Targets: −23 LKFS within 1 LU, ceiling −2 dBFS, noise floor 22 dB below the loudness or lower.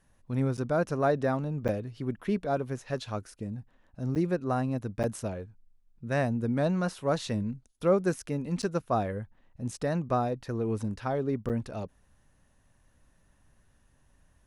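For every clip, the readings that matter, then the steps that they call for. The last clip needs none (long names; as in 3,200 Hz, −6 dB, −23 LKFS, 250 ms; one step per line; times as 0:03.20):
number of dropouts 6; longest dropout 8.3 ms; integrated loudness −31.0 LKFS; sample peak −12.5 dBFS; target loudness −23.0 LKFS
→ repair the gap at 0:00.57/0:01.68/0:04.15/0:05.03/0:08.62/0:11.49, 8.3 ms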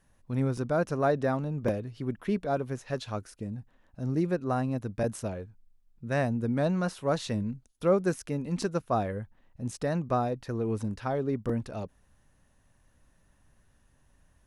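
number of dropouts 0; integrated loudness −31.0 LKFS; sample peak −12.5 dBFS; target loudness −23.0 LKFS
→ level +8 dB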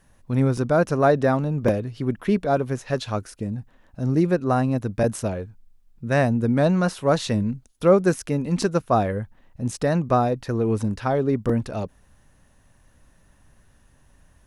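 integrated loudness −23.0 LKFS; sample peak −4.5 dBFS; background noise floor −58 dBFS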